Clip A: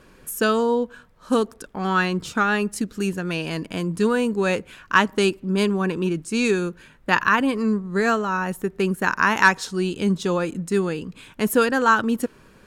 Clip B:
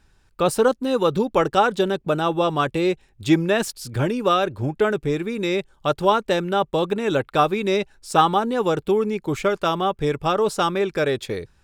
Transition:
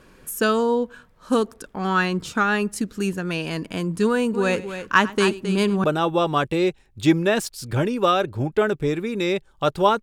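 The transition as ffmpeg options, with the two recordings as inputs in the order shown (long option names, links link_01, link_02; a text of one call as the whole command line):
ffmpeg -i cue0.wav -i cue1.wav -filter_complex "[0:a]asplit=3[link_01][link_02][link_03];[link_01]afade=type=out:start_time=4.33:duration=0.02[link_04];[link_02]aecho=1:1:98|267:0.112|0.299,afade=type=in:start_time=4.33:duration=0.02,afade=type=out:start_time=5.84:duration=0.02[link_05];[link_03]afade=type=in:start_time=5.84:duration=0.02[link_06];[link_04][link_05][link_06]amix=inputs=3:normalize=0,apad=whole_dur=10.02,atrim=end=10.02,atrim=end=5.842[link_07];[1:a]atrim=start=2.068:end=6.25[link_08];[link_07][link_08]acrossfade=duration=0.004:curve1=hsin:curve2=hsin" out.wav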